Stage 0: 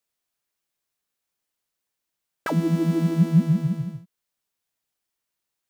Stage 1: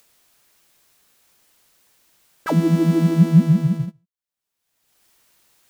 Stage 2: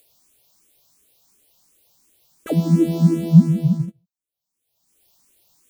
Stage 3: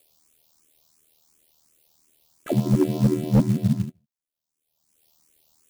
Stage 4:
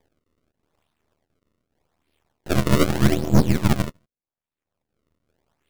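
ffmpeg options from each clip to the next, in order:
-af "agate=range=0.0501:threshold=0.0398:ratio=16:detection=peak,acompressor=mode=upward:threshold=0.0251:ratio=2.5,volume=1.78"
-filter_complex "[0:a]equalizer=f=1600:t=o:w=1.3:g=-13,asplit=2[s0][s1];[s1]afreqshift=2.8[s2];[s0][s2]amix=inputs=2:normalize=1,volume=1.5"
-af "aeval=exprs='val(0)*sin(2*PI*39*n/s)':c=same,asoftclip=type=hard:threshold=0.251,acrusher=bits=6:mode=log:mix=0:aa=0.000001"
-af "aresample=8000,aresample=44100,acrusher=samples=31:mix=1:aa=0.000001:lfo=1:lforange=49.6:lforate=0.83,aeval=exprs='max(val(0),0)':c=same,volume=2"

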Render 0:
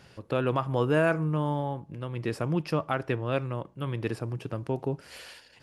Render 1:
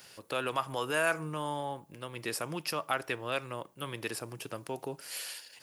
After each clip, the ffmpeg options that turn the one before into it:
-filter_complex "[0:a]aemphasis=mode=production:type=riaa,acrossover=split=680|1500[s0][s1][s2];[s0]alimiter=level_in=1.68:limit=0.0631:level=0:latency=1:release=125,volume=0.596[s3];[s3][s1][s2]amix=inputs=3:normalize=0,volume=0.841"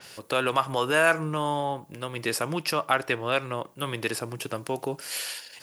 -af "adynamicequalizer=threshold=0.00282:dfrequency=5000:dqfactor=0.7:tfrequency=5000:tqfactor=0.7:attack=5:release=100:ratio=0.375:range=2.5:mode=cutabove:tftype=highshelf,volume=2.51"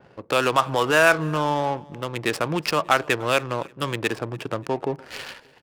-af "adynamicsmooth=sensitivity=6:basefreq=570,aecho=1:1:291|582:0.0631|0.024,volume=1.68"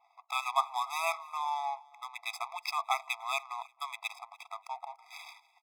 -af "afftfilt=real='re*eq(mod(floor(b*sr/1024/660),2),1)':imag='im*eq(mod(floor(b*sr/1024/660),2),1)':win_size=1024:overlap=0.75,volume=0.422"

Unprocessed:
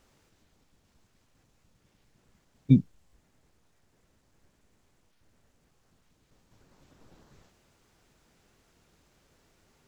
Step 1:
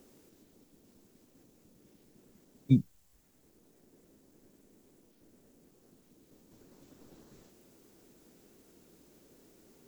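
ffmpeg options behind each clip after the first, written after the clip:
-filter_complex "[0:a]aemphasis=mode=production:type=50fm,acrossover=split=250|390|1000[s0][s1][s2][s3];[s1]acompressor=mode=upward:threshold=0.00794:ratio=2.5[s4];[s0][s4][s2][s3]amix=inputs=4:normalize=0,volume=0.631"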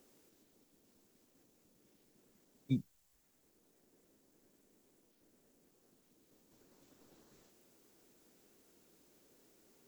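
-af "lowshelf=f=400:g=-8,volume=0.631"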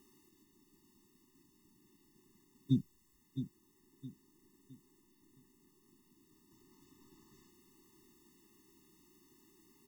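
-af "aecho=1:1:664|1328|1992|2656:0.335|0.117|0.041|0.0144,afftfilt=real='re*eq(mod(floor(b*sr/1024/430),2),0)':imag='im*eq(mod(floor(b*sr/1024/430),2),0)':win_size=1024:overlap=0.75,volume=1.5"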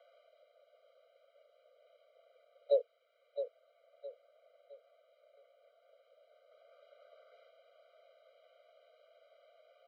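-af "highpass=f=180:t=q:w=0.5412,highpass=f=180:t=q:w=1.307,lowpass=f=3500:t=q:w=0.5176,lowpass=f=3500:t=q:w=0.7071,lowpass=f=3500:t=q:w=1.932,afreqshift=300,volume=1.5"

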